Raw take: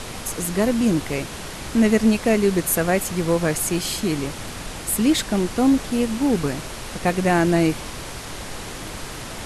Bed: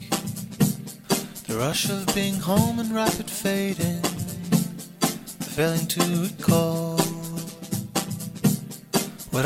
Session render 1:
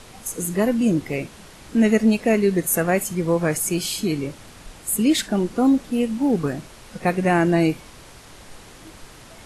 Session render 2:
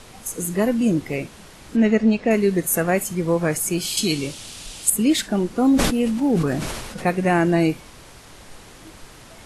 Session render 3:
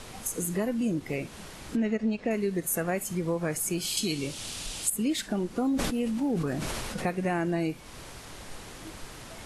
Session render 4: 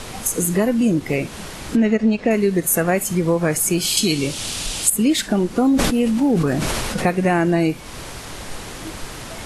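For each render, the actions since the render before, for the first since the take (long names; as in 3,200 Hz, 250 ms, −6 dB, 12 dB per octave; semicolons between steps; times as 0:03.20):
noise reduction from a noise print 11 dB
0:01.76–0:02.31: high-frequency loss of the air 110 metres; 0:03.97–0:04.90: flat-topped bell 5,300 Hz +12 dB 2.3 octaves; 0:05.62–0:07.08: level that may fall only so fast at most 34 dB per second
downward compressor 2.5 to 1, threshold −30 dBFS, peak gain reduction 11.5 dB; every ending faded ahead of time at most 580 dB per second
level +11 dB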